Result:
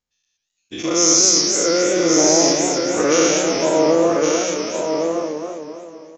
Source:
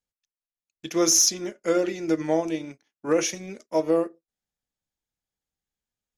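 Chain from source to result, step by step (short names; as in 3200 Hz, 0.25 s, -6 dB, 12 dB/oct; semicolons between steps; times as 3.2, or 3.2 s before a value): spectral dilation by 0.24 s; downsampling 16000 Hz; on a send: echo 1.117 s -6.5 dB; on the sum: AGC gain up to 3 dB; warbling echo 0.26 s, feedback 56%, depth 162 cents, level -6 dB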